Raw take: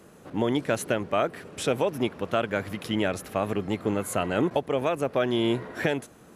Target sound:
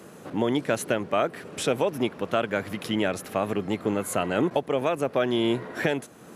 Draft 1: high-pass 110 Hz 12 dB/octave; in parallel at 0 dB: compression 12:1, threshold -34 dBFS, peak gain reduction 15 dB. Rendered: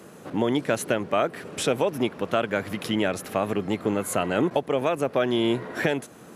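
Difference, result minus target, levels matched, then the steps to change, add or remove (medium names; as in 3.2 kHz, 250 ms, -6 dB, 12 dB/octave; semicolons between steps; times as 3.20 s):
compression: peak gain reduction -7.5 dB
change: compression 12:1, threshold -42 dBFS, peak gain reduction 22.5 dB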